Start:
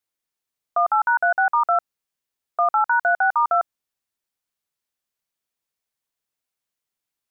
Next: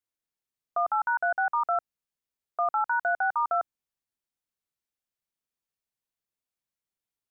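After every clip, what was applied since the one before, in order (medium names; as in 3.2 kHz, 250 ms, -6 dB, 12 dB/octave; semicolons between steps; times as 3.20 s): bass shelf 360 Hz +6 dB; trim -8 dB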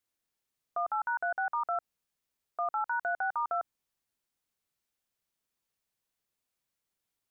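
peak limiter -29.5 dBFS, peak gain reduction 10.5 dB; trim +5 dB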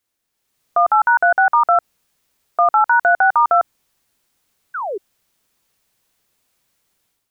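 painted sound fall, 4.74–4.98 s, 360–1600 Hz -42 dBFS; level rider gain up to 9.5 dB; trim +8.5 dB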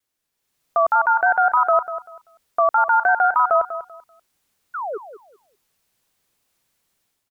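vibrato 3.3 Hz 90 cents; feedback delay 194 ms, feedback 23%, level -12 dB; trim -3 dB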